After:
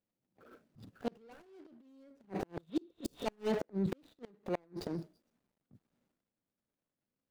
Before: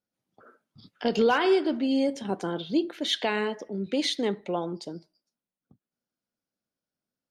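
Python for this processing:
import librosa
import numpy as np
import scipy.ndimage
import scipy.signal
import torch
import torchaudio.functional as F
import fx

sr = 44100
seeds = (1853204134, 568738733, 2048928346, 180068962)

y = scipy.signal.medfilt(x, 41)
y = fx.transient(y, sr, attack_db=-10, sustain_db=12)
y = fx.spec_repair(y, sr, seeds[0], start_s=2.7, length_s=0.53, low_hz=580.0, high_hz=4200.0, source='before')
y = fx.gate_flip(y, sr, shuts_db=-23.0, range_db=-35)
y = y * librosa.db_to_amplitude(1.0)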